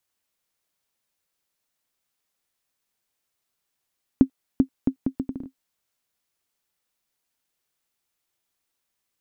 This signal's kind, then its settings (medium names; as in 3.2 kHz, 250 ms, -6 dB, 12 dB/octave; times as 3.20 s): bouncing ball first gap 0.39 s, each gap 0.7, 265 Hz, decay 88 ms -4 dBFS